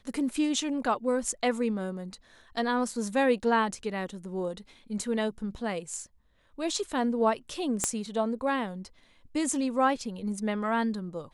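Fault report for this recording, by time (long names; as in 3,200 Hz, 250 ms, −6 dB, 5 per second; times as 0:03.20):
0:07.84: click −12 dBFS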